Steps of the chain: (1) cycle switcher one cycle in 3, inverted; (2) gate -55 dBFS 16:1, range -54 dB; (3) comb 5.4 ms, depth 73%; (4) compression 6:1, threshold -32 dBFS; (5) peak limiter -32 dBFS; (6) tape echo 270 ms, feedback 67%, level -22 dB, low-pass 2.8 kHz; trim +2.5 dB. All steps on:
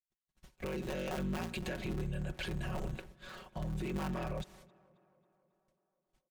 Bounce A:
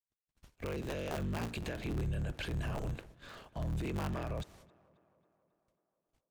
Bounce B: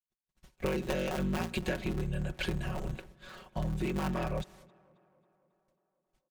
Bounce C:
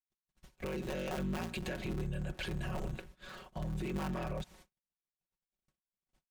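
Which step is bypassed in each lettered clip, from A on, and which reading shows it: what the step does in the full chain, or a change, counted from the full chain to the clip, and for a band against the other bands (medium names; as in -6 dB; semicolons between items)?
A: 3, 125 Hz band +3.0 dB; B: 5, mean gain reduction 3.0 dB; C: 6, echo-to-direct -47.5 dB to none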